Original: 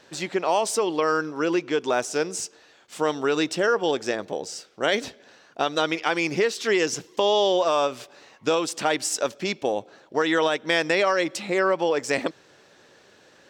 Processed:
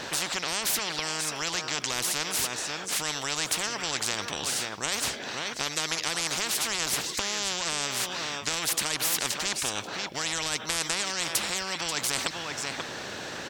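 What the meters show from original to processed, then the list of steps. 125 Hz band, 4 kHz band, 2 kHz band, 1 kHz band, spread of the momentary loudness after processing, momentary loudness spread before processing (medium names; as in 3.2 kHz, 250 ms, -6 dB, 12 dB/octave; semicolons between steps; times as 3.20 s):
-3.0 dB, +2.5 dB, -3.5 dB, -8.0 dB, 5 LU, 10 LU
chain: delay 536 ms -19 dB; spectrum-flattening compressor 10:1; trim -2.5 dB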